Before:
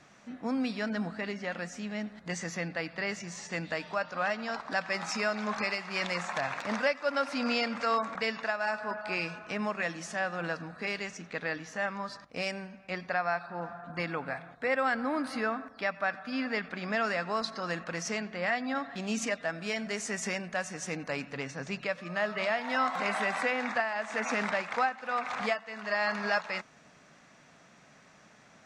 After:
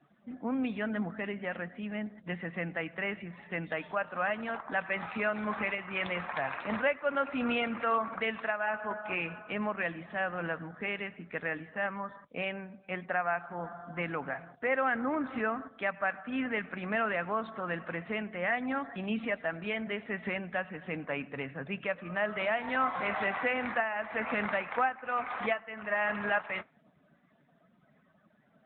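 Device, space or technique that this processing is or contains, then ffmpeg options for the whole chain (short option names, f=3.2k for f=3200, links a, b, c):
mobile call with aggressive noise cancelling: -af "highpass=100,afftdn=nr=20:nf=-52" -ar 8000 -c:a libopencore_amrnb -b:a 10200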